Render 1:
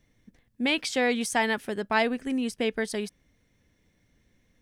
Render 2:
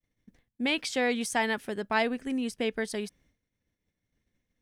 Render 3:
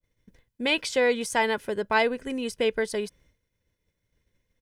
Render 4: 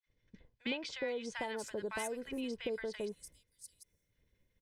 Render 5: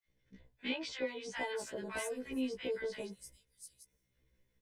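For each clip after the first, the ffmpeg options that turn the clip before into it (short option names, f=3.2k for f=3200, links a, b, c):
-af "agate=range=-33dB:threshold=-57dB:ratio=3:detection=peak,volume=-2.5dB"
-af "aecho=1:1:2:0.47,adynamicequalizer=threshold=0.00891:dfrequency=1600:dqfactor=0.7:tfrequency=1600:tqfactor=0.7:attack=5:release=100:ratio=0.375:range=3:mode=cutabove:tftype=highshelf,volume=4dB"
-filter_complex "[0:a]acompressor=threshold=-34dB:ratio=4,acrossover=split=1100|6000[a][b][c];[a]adelay=60[d];[c]adelay=740[e];[d][b][e]amix=inputs=3:normalize=0,volume=-2.5dB"
-af "afftfilt=real='re*1.73*eq(mod(b,3),0)':imag='im*1.73*eq(mod(b,3),0)':win_size=2048:overlap=0.75,volume=2.5dB"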